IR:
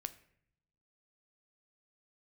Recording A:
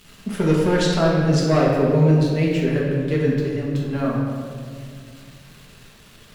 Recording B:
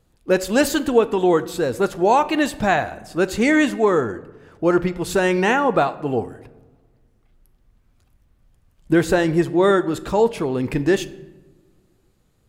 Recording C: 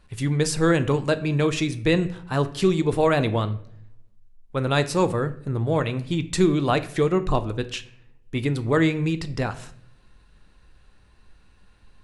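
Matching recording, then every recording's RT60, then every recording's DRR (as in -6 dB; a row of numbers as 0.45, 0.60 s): C; 2.1 s, not exponential, 0.65 s; -5.0, 12.5, 10.5 dB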